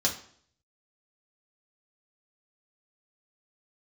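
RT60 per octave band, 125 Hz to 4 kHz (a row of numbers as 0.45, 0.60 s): 0.70, 0.60, 0.60, 0.55, 0.50, 0.50 s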